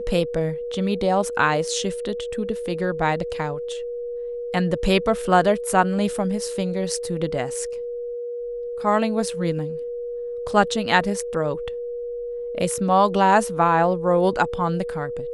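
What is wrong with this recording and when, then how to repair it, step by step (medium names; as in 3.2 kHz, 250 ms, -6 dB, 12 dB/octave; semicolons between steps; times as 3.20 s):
whine 480 Hz -27 dBFS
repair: band-stop 480 Hz, Q 30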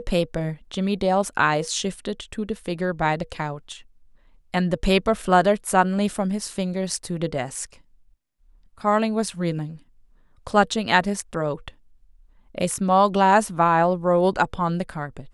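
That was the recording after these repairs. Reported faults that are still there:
nothing left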